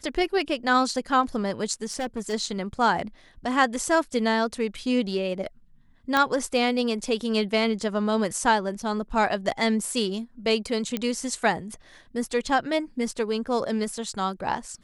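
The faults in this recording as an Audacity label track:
1.850000	2.340000	clipping −25 dBFS
6.170000	6.170000	click −9 dBFS
10.970000	10.970000	click −13 dBFS

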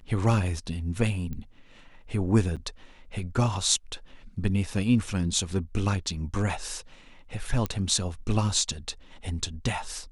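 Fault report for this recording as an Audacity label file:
1.330000	1.330000	click −24 dBFS
2.560000	2.570000	drop-out 7.3 ms
7.660000	7.660000	click −15 dBFS

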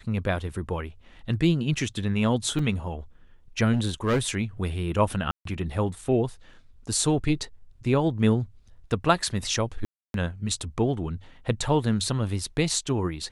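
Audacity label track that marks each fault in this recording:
2.590000	2.590000	drop-out 3 ms
3.720000	4.190000	clipping −19 dBFS
5.310000	5.450000	drop-out 143 ms
9.850000	10.140000	drop-out 292 ms

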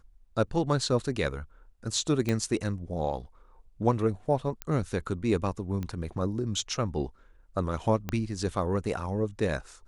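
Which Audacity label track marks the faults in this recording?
2.290000	2.290000	click −15 dBFS
4.620000	4.620000	click −16 dBFS
5.830000	5.830000	click −22 dBFS
8.090000	8.090000	click −16 dBFS

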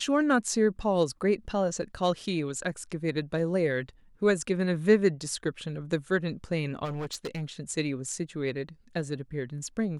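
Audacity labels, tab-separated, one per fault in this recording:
6.840000	7.420000	clipping −30 dBFS

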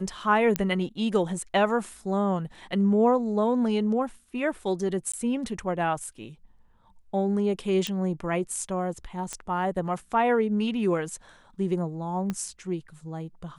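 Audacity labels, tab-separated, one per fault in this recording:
0.560000	0.560000	click −9 dBFS
5.120000	5.130000	drop-out 15 ms
7.870000	7.870000	click
9.330000	9.330000	click −18 dBFS
12.300000	12.300000	click −17 dBFS

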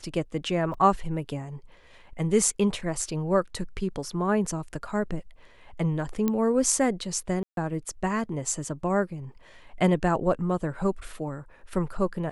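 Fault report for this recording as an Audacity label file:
0.740000	0.740000	drop-out 4 ms
6.280000	6.280000	click −13 dBFS
7.430000	7.570000	drop-out 142 ms

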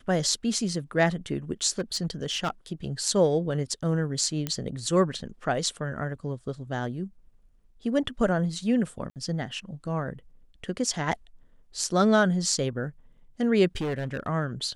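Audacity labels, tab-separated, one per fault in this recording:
1.700000	2.500000	clipping −22.5 dBFS
4.470000	4.470000	click −14 dBFS
9.100000	9.160000	drop-out 58 ms
13.770000	14.280000	clipping −25.5 dBFS

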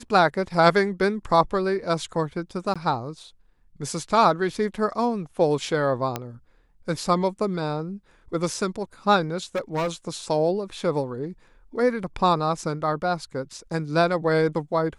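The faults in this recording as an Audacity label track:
2.740000	2.760000	drop-out 16 ms
6.160000	6.160000	click −12 dBFS
9.550000	9.890000	clipping −21.5 dBFS

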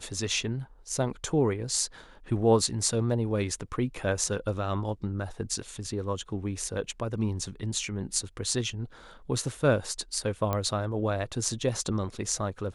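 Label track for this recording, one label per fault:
10.530000	10.530000	click −15 dBFS

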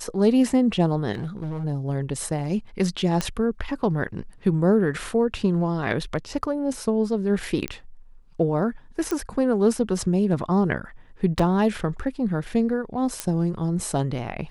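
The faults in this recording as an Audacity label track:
1.140000	1.650000	clipping −26 dBFS
3.210000	3.210000	click −10 dBFS
7.680000	7.680000	click −13 dBFS
9.110000	9.110000	click −14 dBFS
11.390000	11.390000	drop-out 4.3 ms
13.200000	13.200000	click −9 dBFS

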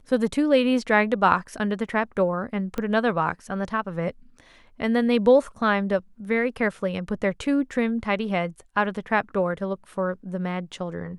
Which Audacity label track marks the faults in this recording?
2.780000	2.780000	click −16 dBFS

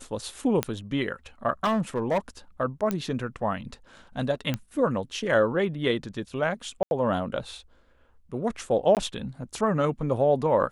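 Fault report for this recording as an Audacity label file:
0.630000	0.630000	click −10 dBFS
1.640000	2.180000	clipping −20 dBFS
2.910000	2.910000	click −14 dBFS
4.540000	4.540000	click −14 dBFS
6.830000	6.910000	drop-out 81 ms
8.950000	8.970000	drop-out 18 ms

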